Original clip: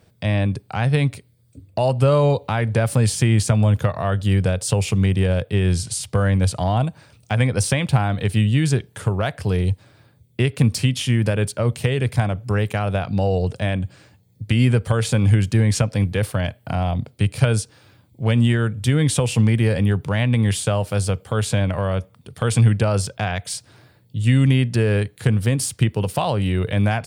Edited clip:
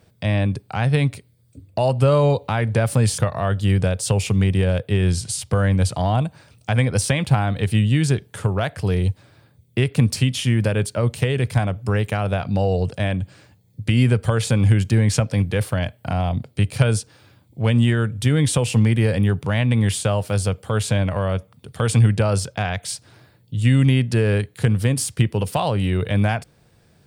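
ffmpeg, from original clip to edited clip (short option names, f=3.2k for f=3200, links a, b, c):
-filter_complex "[0:a]asplit=2[a][b];[a]atrim=end=3.182[c];[b]atrim=start=3.798[d];[c][d]acrossfade=d=0.004:c1=hsin:c2=hsin"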